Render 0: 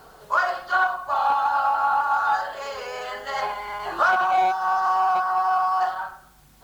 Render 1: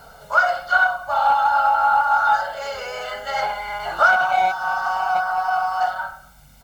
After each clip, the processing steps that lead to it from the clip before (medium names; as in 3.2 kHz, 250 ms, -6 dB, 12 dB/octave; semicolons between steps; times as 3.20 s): band-stop 760 Hz, Q 16; comb 1.4 ms, depth 71%; trim +2 dB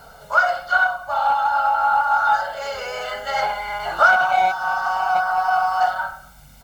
gain riding within 3 dB 2 s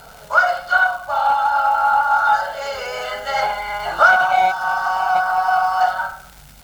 crackle 340 per s -34 dBFS; trim +2 dB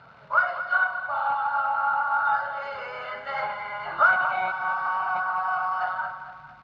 cabinet simulation 120–3400 Hz, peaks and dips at 120 Hz +9 dB, 450 Hz -6 dB, 740 Hz -7 dB, 1.1 kHz +6 dB, 3.2 kHz -7 dB; feedback delay 226 ms, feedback 48%, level -11.5 dB; trim -7.5 dB